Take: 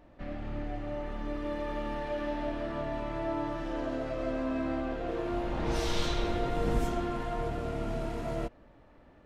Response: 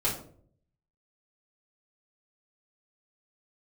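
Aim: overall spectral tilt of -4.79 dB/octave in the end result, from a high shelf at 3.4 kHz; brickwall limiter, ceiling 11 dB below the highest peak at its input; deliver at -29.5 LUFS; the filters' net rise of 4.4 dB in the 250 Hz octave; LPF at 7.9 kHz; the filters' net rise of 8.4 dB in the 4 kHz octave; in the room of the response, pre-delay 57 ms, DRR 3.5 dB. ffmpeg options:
-filter_complex "[0:a]lowpass=7900,equalizer=f=250:t=o:g=5.5,highshelf=f=3400:g=7.5,equalizer=f=4000:t=o:g=5.5,alimiter=level_in=1.12:limit=0.0631:level=0:latency=1,volume=0.891,asplit=2[s0][s1];[1:a]atrim=start_sample=2205,adelay=57[s2];[s1][s2]afir=irnorm=-1:irlink=0,volume=0.251[s3];[s0][s3]amix=inputs=2:normalize=0,volume=1.58"

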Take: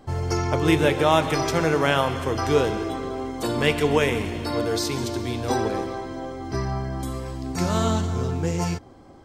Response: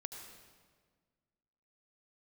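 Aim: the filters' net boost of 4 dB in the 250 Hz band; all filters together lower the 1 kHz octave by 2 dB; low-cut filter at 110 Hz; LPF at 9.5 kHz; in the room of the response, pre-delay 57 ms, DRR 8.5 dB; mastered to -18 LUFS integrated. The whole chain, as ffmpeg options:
-filter_complex "[0:a]highpass=110,lowpass=9500,equalizer=f=250:t=o:g=6,equalizer=f=1000:t=o:g=-3,asplit=2[s0][s1];[1:a]atrim=start_sample=2205,adelay=57[s2];[s1][s2]afir=irnorm=-1:irlink=0,volume=0.501[s3];[s0][s3]amix=inputs=2:normalize=0,volume=1.58"

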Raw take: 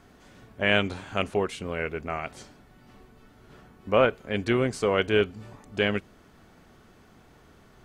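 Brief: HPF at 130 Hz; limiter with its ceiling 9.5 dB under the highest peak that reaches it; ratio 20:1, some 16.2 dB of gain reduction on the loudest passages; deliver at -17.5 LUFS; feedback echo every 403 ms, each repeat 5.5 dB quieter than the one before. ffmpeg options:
-af "highpass=130,acompressor=threshold=0.0282:ratio=20,alimiter=level_in=1.5:limit=0.0631:level=0:latency=1,volume=0.668,aecho=1:1:403|806|1209|1612|2015|2418|2821:0.531|0.281|0.149|0.079|0.0419|0.0222|0.0118,volume=15"

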